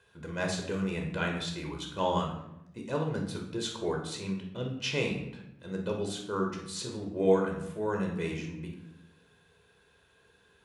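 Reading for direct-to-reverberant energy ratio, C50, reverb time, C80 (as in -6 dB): 1.0 dB, 5.5 dB, 0.85 s, 8.5 dB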